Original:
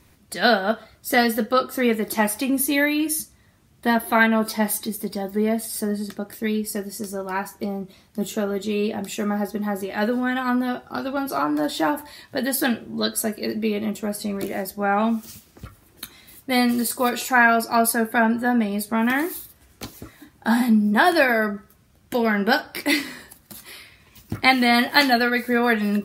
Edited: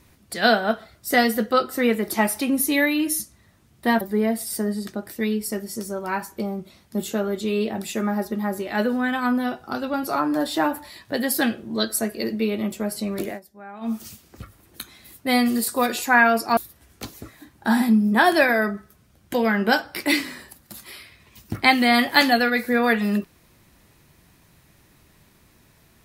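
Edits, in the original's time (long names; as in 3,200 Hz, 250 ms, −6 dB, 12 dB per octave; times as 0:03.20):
0:04.01–0:05.24: remove
0:14.51–0:15.16: duck −19 dB, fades 0.12 s
0:17.80–0:19.37: remove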